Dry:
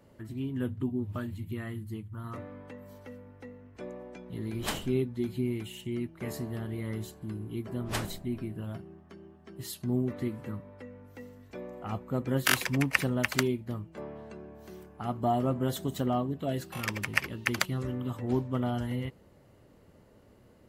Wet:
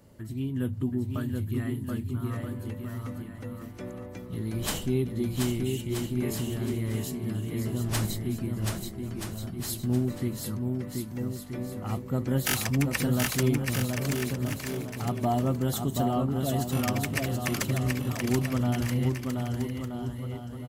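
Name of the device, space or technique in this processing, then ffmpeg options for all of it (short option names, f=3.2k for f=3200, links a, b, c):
saturation between pre-emphasis and de-emphasis: -af "bass=f=250:g=5,treble=f=4k:g=8,highshelf=f=2.4k:g=10,asoftclip=type=tanh:threshold=-13dB,highshelf=f=2.4k:g=-10,aecho=1:1:730|1278|1688|1996|2227:0.631|0.398|0.251|0.158|0.1"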